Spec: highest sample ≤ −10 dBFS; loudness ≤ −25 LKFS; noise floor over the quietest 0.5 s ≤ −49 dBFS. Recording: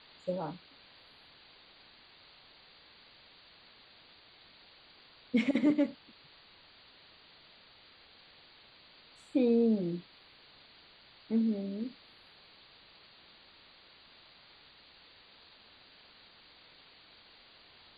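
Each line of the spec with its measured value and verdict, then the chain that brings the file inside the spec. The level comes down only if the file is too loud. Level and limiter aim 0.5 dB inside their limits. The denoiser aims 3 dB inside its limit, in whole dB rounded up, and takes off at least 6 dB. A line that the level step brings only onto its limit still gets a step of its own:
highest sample −17.5 dBFS: in spec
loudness −32.0 LKFS: in spec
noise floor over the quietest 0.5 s −59 dBFS: in spec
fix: no processing needed

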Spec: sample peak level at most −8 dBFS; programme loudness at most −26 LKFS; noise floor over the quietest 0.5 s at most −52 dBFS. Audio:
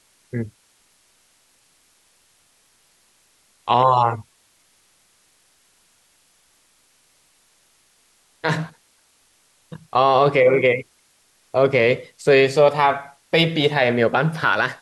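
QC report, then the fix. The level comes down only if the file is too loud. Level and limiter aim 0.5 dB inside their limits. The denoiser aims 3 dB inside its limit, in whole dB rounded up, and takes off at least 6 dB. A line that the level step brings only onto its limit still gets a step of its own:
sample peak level −5.5 dBFS: out of spec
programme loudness −18.5 LKFS: out of spec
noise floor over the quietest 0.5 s −60 dBFS: in spec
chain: level −8 dB

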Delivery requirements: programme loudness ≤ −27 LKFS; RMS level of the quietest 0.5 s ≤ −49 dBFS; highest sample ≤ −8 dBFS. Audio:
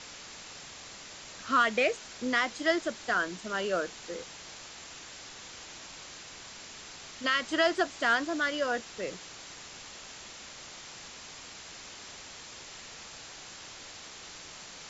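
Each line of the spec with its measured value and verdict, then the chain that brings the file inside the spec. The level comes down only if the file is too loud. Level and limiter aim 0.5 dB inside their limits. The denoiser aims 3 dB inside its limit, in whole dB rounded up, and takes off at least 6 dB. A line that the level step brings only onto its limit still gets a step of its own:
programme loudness −29.5 LKFS: in spec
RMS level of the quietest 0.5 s −47 dBFS: out of spec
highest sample −12.5 dBFS: in spec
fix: broadband denoise 6 dB, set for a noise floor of −47 dBFS

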